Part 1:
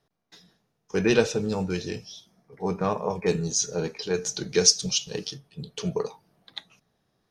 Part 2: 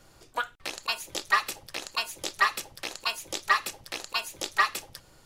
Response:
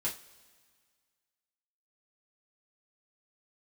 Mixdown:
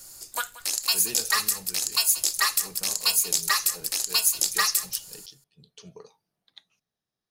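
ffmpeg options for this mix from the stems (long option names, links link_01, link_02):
-filter_complex "[0:a]volume=-19dB[link_01];[1:a]bandreject=frequency=5800:width=16,aexciter=amount=6.1:drive=2.6:freq=4700,volume=-4dB,asplit=2[link_02][link_03];[link_03]volume=-17dB,aecho=0:1:181:1[link_04];[link_01][link_02][link_04]amix=inputs=3:normalize=0,highshelf=frequency=2000:gain=9.5,asoftclip=type=hard:threshold=-1dB,alimiter=limit=-8dB:level=0:latency=1:release=80"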